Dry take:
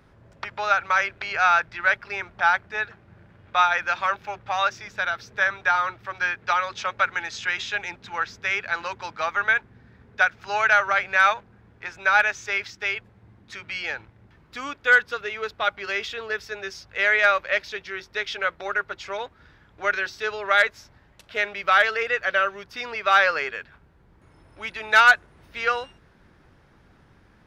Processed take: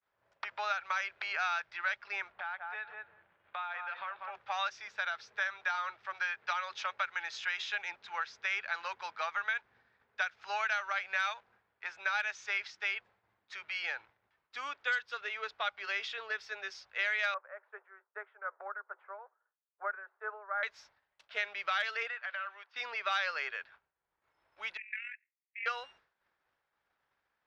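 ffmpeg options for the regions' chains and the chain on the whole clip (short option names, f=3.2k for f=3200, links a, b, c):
-filter_complex "[0:a]asettb=1/sr,asplit=3[a][b][c];[a]atrim=end=2.324[d];[b]atrim=start=2.32:end=4.35,asetpts=PTS-STARTPTS,afade=t=in:d=0.004:c=qsin,afade=t=out:st=2.026:d=0.004:c=qsin,lowpass=f=3.8k:w=0.5412,lowpass=f=3.8k:w=1.3066,asplit=2[e][f];[f]adelay=190,lowpass=f=950:p=1,volume=-7dB,asplit=2[g][h];[h]adelay=190,lowpass=f=950:p=1,volume=0.21,asplit=2[i][j];[j]adelay=190,lowpass=f=950:p=1,volume=0.21[k];[e][g][i][k]amix=inputs=4:normalize=0,atrim=end_sample=89523,acompressor=threshold=-31dB:ratio=4:attack=3.2:release=140:knee=1:detection=peak[l];[c]atrim=start=4.346[m];[d][l]acrossfade=d=0.004:c1=hsin:c2=qsin[n];[n][m]acrossfade=d=0.004:c1=qsin:c2=hsin,asettb=1/sr,asplit=3[o][p][q];[o]atrim=end=17.344[r];[p]atrim=start=17.34:end=20.63,asetpts=PTS-STARTPTS,afade=t=in:d=0.004:c=qsin,afade=t=out:st=3.286:d=0.004:c=qsin,tremolo=f=2.4:d=0.7,asuperpass=centerf=770:order=8:qfactor=0.69[s];[q]atrim=start=20.626[t];[r][s]acrossfade=d=0.004:c1=hsin:c2=qsin[u];[u][t]acrossfade=d=0.004:c1=qsin:c2=hsin,asettb=1/sr,asplit=3[v][w][x];[v]atrim=end=22.084[y];[w]atrim=start=22.08:end=22.76,asetpts=PTS-STARTPTS,afade=t=in:d=0.004:c=qsin,afade=t=out:st=0.676:d=0.004:c=qsin,acompressor=threshold=-25dB:ratio=10:attack=3.2:release=140:knee=1:detection=peak,aeval=exprs='(tanh(10*val(0)+0.3)-tanh(0.3))/10':c=same,highpass=770,lowpass=3.1k[z];[x]atrim=start=22.756[aa];[y][z]acrossfade=d=0.004:c1=hsin:c2=qsin[ab];[ab][aa]acrossfade=d=0.004:c1=qsin:c2=hsin,asettb=1/sr,asplit=3[ac][ad][ae];[ac]atrim=end=24.774[af];[ad]atrim=start=24.77:end=25.66,asetpts=PTS-STARTPTS,afade=t=in:d=0.004:c=qsin,afade=t=out:st=0.886:d=0.004:c=qsin,acompressor=threshold=-17dB:ratio=6:attack=3.2:release=140:knee=1:detection=peak,asuperpass=centerf=2200:order=8:qfactor=2.6,tremolo=f=43:d=0.571[ag];[ae]atrim=start=25.656[ah];[af][ag]acrossfade=d=0.004:c1=hsin:c2=qsin[ai];[ai][ah]acrossfade=d=0.004:c1=qsin:c2=hsin,agate=range=-33dB:threshold=-46dB:ratio=3:detection=peak,acrossover=split=550 6200:gain=0.0794 1 0.112[aj][ak][al];[aj][ak][al]amix=inputs=3:normalize=0,acrossover=split=130|3000[am][an][ao];[an]acompressor=threshold=-26dB:ratio=6[ap];[am][ap][ao]amix=inputs=3:normalize=0,volume=-6dB"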